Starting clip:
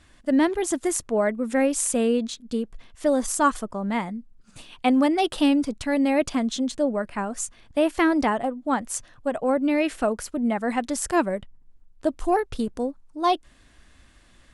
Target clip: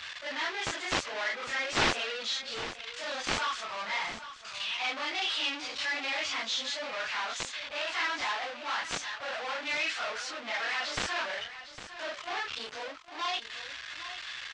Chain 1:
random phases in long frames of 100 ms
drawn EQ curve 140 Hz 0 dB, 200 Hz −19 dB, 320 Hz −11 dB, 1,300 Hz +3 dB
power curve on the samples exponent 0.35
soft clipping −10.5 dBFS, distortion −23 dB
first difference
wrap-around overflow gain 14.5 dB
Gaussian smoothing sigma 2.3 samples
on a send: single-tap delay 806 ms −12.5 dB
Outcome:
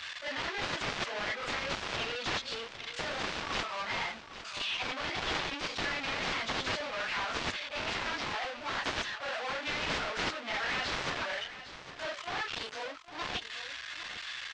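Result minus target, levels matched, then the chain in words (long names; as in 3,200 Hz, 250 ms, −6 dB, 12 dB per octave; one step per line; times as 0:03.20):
wrap-around overflow: distortion +29 dB
random phases in long frames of 100 ms
drawn EQ curve 140 Hz 0 dB, 200 Hz −19 dB, 320 Hz −11 dB, 1,300 Hz +3 dB
power curve on the samples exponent 0.35
soft clipping −10.5 dBFS, distortion −23 dB
first difference
wrap-around overflow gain 8.5 dB
Gaussian smoothing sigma 2.3 samples
on a send: single-tap delay 806 ms −12.5 dB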